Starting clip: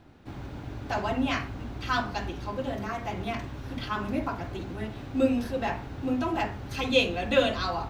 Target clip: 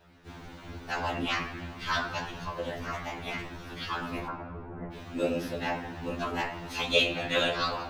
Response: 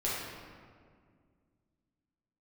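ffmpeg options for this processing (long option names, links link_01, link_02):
-filter_complex "[0:a]asettb=1/sr,asplit=3[link_01][link_02][link_03];[link_01]atrim=end=4.274[link_04];[link_02]atrim=start=4.27:end=4.93,asetpts=PTS-STARTPTS,afade=type=in:duration=0.004:curve=qsin,afade=type=out:start_time=0.656:duration=0.004:curve=qsin,lowpass=frequency=1300:width=0.5412,lowpass=frequency=1300:width=1.3066[link_05];[link_03]atrim=start=4.926[link_06];[link_04][link_05]acrossfade=duration=0.004:curve1=hsin:curve2=qsin[link_07];[link_07][link_06]acrossfade=duration=0.004:curve1=qsin:curve2=hsin,tiltshelf=frequency=840:gain=-5.5,asplit=2[link_08][link_09];[1:a]atrim=start_sample=2205,lowshelf=frequency=89:gain=11.5,highshelf=frequency=7800:gain=-10[link_10];[link_09][link_10]afir=irnorm=-1:irlink=0,volume=-11.5dB[link_11];[link_08][link_11]amix=inputs=2:normalize=0,afftfilt=real='hypot(re,im)*cos(2*PI*random(0))':imag='hypot(re,im)*sin(2*PI*random(1))':win_size=512:overlap=0.75,afftfilt=real='re*2*eq(mod(b,4),0)':imag='im*2*eq(mod(b,4),0)':win_size=2048:overlap=0.75,volume=3.5dB"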